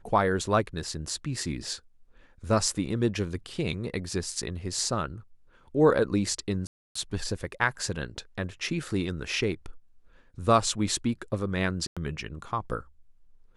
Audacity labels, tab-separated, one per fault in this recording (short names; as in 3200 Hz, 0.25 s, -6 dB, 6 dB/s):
6.670000	6.950000	gap 0.284 s
11.870000	11.970000	gap 96 ms